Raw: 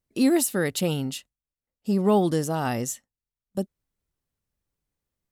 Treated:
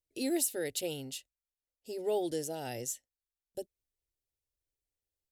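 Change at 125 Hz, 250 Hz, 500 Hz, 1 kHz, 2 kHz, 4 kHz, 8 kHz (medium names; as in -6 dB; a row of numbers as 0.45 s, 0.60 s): -19.5 dB, -14.5 dB, -9.0 dB, -14.0 dB, -12.0 dB, -7.0 dB, -5.5 dB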